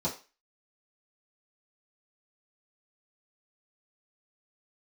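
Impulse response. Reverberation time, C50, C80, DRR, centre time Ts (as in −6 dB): 0.30 s, 11.0 dB, 16.5 dB, −9.0 dB, 20 ms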